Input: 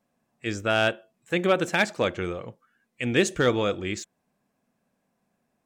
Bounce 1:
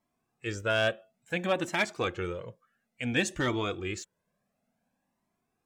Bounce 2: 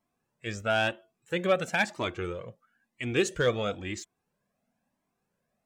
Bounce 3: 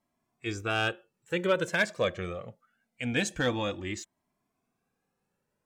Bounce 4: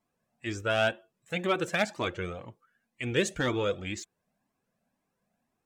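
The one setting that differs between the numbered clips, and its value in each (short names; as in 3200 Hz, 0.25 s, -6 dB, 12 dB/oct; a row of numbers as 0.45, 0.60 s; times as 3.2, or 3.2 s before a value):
cascading flanger, rate: 0.57, 1, 0.24, 2 Hz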